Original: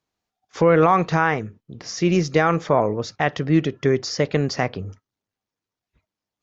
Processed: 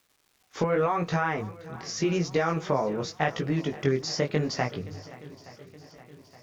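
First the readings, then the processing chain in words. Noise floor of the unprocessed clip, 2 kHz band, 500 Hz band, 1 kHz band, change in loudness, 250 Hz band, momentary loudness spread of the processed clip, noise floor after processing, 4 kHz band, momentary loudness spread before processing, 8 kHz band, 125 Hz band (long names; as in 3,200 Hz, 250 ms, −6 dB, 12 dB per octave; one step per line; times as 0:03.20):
below −85 dBFS, −7.5 dB, −7.5 dB, −8.0 dB, −8.0 dB, −8.0 dB, 18 LU, −68 dBFS, −4.0 dB, 14 LU, can't be measured, −6.5 dB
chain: mains-hum notches 50/100 Hz
downward compressor, threshold −18 dBFS, peak gain reduction 7 dB
chorus effect 0.86 Hz, delay 17 ms, depth 6 ms
surface crackle 590 per second −53 dBFS
on a send: feedback echo with a long and a short gap by turns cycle 870 ms, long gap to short 1.5 to 1, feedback 52%, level −19 dB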